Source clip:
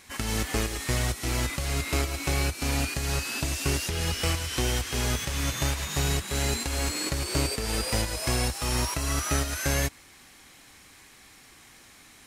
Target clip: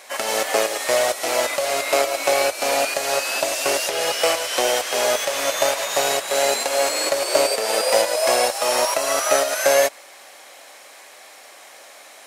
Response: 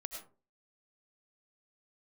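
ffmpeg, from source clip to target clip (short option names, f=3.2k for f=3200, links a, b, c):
-af "highpass=f=590:t=q:w=4.9,volume=7.5dB"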